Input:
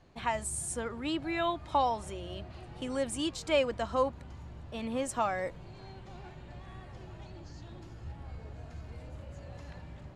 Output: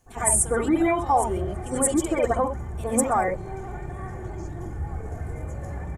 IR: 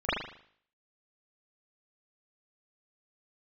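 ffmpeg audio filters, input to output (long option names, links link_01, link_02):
-filter_complex "[0:a]alimiter=level_in=0.5dB:limit=-24dB:level=0:latency=1:release=121,volume=-0.5dB,aexciter=amount=15.4:drive=3.6:freq=6400,atempo=1.7[link_01];[1:a]atrim=start_sample=2205,atrim=end_sample=3528,asetrate=27783,aresample=44100[link_02];[link_01][link_02]afir=irnorm=-1:irlink=0,volume=-2.5dB"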